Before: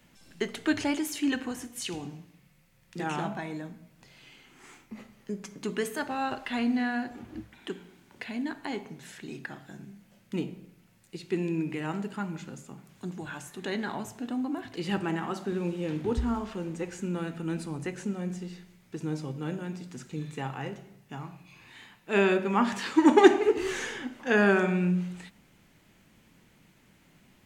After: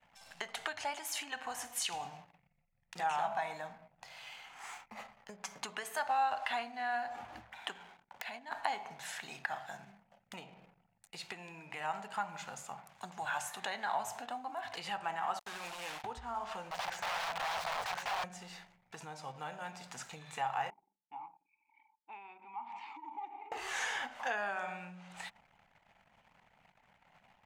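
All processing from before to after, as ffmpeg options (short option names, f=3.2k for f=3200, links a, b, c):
-filter_complex "[0:a]asettb=1/sr,asplit=3[a][b][c];[a]atrim=end=7.784[d];[b]atrim=start=7.78:end=8.52,asetpts=PTS-STARTPTS,afade=t=in:d=0.004:c=qsin,afade=t=out:st=0.736:d=0.004:c=qsin,agate=range=-33dB:threshold=-56dB:ratio=3:release=100:detection=peak,acompressor=threshold=-41dB:ratio=16:attack=3.2:release=140:knee=1:detection=peak,aeval=exprs='(mod(35.5*val(0)+1,2)-1)/35.5':c=same[e];[c]atrim=start=8.516[f];[d][e]acrossfade=d=0.004:c1=hsin:c2=qsin[g];[g][f]acrossfade=d=0.004:c1=qsin:c2=hsin,asettb=1/sr,asplit=3[h][i][j];[h]atrim=end=15.394[k];[i]atrim=start=15.39:end=16.04,asetpts=PTS-STARTPTS,afade=t=in:d=0.004:c=qsin,afade=t=out:st=0.646:d=0.004:c=qsin,highpass=320,equalizer=f=700:w=0.8:g=-13,acrusher=bits=6:mix=0:aa=0.5[l];[j]atrim=start=16.036[m];[k][l]acrossfade=d=0.004:c1=hsin:c2=qsin[n];[n][m]acrossfade=d=0.004:c1=qsin:c2=hsin,asettb=1/sr,asplit=3[o][p][q];[o]atrim=end=16.714[r];[p]atrim=start=16.71:end=18.24,asetpts=PTS-STARTPTS,afade=t=in:d=0.004:c=qsin,afade=t=out:st=1.526:d=0.004:c=qsin,aeval=exprs='(mod(59.6*val(0)+1,2)-1)/59.6':c=same,acrossover=split=5300[s][t];[t]acompressor=threshold=-59dB:ratio=4:attack=1:release=60[u];[s][u]amix=inputs=2:normalize=0[v];[q]atrim=start=18.236[w];[r][v]acrossfade=d=0.004:c1=hsin:c2=qsin[x];[x][w]acrossfade=d=0.004:c1=qsin:c2=hsin,asettb=1/sr,asplit=3[y][z][aa];[y]atrim=end=20.704[ab];[z]atrim=start=20.7:end=23.52,asetpts=PTS-STARTPTS,afade=t=in:d=0.004:c=qsin,afade=t=out:st=2.816:d=0.004:c=qsin,acompressor=threshold=-32dB:ratio=16:attack=3.2:release=140:knee=1:detection=peak,asplit=3[ac][ad][ae];[ac]bandpass=f=300:t=q:w=8,volume=0dB[af];[ad]bandpass=f=870:t=q:w=8,volume=-6dB[ag];[ae]bandpass=f=2.24k:t=q:w=8,volume=-9dB[ah];[af][ag][ah]amix=inputs=3:normalize=0,lowshelf=f=110:g=-9.5[ai];[aa]atrim=start=23.516[aj];[ab][ai]acrossfade=d=0.004:c1=hsin:c2=qsin[ak];[ak][aj]acrossfade=d=0.004:c1=qsin:c2=hsin,acompressor=threshold=-36dB:ratio=10,anlmdn=0.0000631,lowshelf=f=500:t=q:w=3:g=-14,volume=3.5dB"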